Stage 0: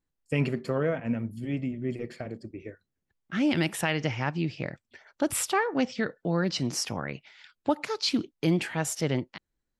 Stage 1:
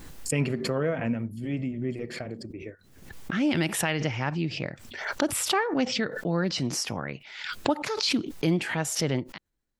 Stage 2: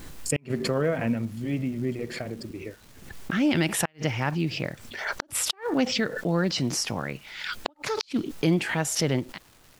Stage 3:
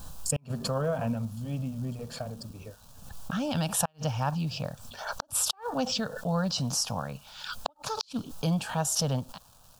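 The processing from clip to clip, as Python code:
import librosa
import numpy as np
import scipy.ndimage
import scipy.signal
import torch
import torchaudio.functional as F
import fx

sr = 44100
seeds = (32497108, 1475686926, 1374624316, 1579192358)

y1 = fx.pre_swell(x, sr, db_per_s=62.0)
y2 = fx.dmg_crackle(y1, sr, seeds[0], per_s=590.0, level_db=-46.0)
y2 = fx.dmg_noise_colour(y2, sr, seeds[1], colour='pink', level_db=-60.0)
y2 = fx.gate_flip(y2, sr, shuts_db=-13.0, range_db=-37)
y2 = y2 * librosa.db_to_amplitude(2.0)
y3 = fx.fixed_phaser(y2, sr, hz=850.0, stages=4)
y3 = y3 * librosa.db_to_amplitude(1.0)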